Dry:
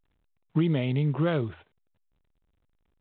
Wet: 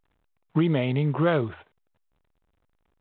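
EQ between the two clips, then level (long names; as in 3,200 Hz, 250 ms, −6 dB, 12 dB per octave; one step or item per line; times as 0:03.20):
parametric band 980 Hz +7 dB 2.8 octaves
0.0 dB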